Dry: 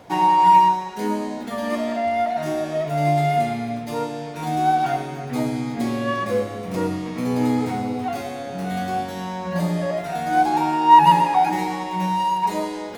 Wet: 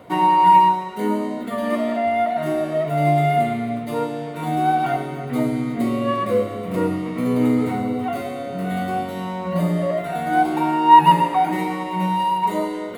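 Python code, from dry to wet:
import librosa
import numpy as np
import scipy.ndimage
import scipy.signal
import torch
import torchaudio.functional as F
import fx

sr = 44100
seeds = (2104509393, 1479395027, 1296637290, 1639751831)

y = fx.peak_eq(x, sr, hz=5700.0, db=-13.5, octaves=0.66)
y = fx.notch_comb(y, sr, f0_hz=830.0)
y = F.gain(torch.from_numpy(y), 3.0).numpy()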